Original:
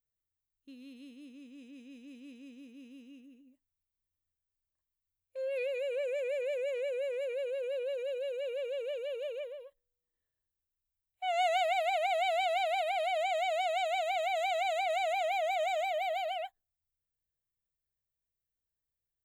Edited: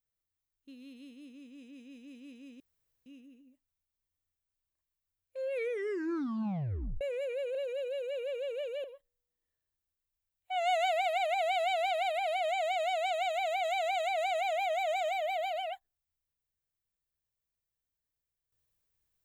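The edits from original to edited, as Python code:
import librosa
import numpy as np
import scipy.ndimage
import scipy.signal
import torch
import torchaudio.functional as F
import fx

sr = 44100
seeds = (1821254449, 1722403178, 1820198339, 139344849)

y = fx.edit(x, sr, fx.room_tone_fill(start_s=2.6, length_s=0.46),
    fx.tape_stop(start_s=5.51, length_s=1.5),
    fx.cut(start_s=7.55, length_s=0.3),
    fx.cut(start_s=9.14, length_s=0.42), tone=tone)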